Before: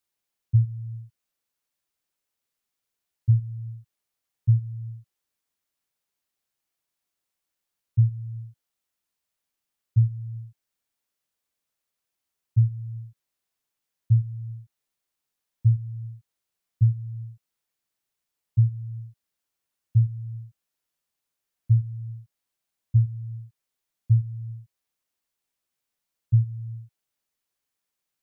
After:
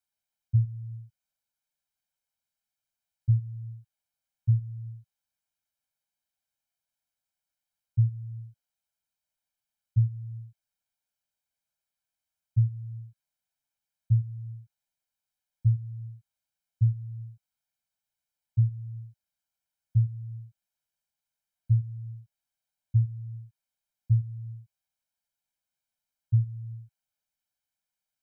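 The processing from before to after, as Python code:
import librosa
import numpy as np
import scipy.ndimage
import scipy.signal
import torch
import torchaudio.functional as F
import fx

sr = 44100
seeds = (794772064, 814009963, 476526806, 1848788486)

y = x + 0.94 * np.pad(x, (int(1.3 * sr / 1000.0), 0))[:len(x)]
y = y * 10.0 ** (-8.5 / 20.0)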